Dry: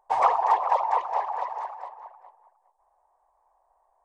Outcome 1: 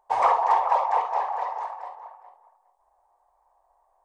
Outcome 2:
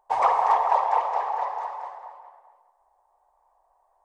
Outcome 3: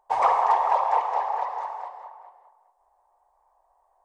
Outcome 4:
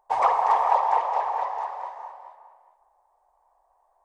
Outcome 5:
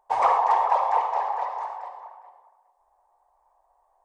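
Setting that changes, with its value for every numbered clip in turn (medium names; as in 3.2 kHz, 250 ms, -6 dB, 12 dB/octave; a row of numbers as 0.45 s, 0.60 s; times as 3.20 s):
gated-style reverb, gate: 90 ms, 340 ms, 230 ms, 500 ms, 150 ms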